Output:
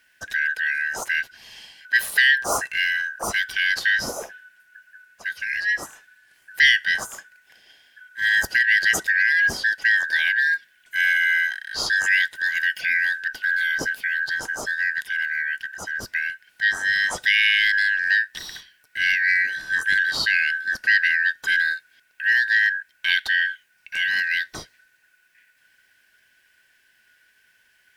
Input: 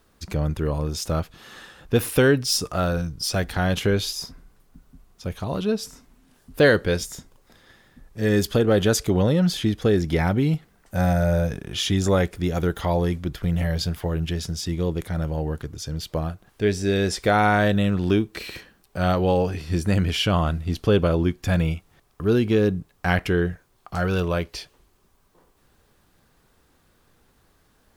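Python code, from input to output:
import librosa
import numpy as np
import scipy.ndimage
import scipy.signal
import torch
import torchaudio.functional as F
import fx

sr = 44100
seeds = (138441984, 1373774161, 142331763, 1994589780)

y = fx.band_shuffle(x, sr, order='4123')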